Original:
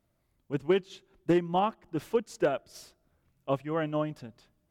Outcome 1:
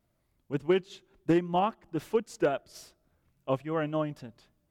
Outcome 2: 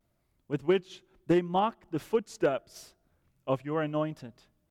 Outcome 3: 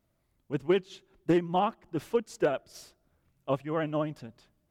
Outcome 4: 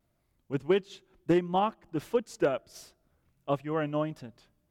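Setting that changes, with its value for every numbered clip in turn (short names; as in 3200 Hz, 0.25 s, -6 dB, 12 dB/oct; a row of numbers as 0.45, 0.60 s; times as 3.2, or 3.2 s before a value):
vibrato, rate: 3.6, 0.76, 15, 1.5 Hz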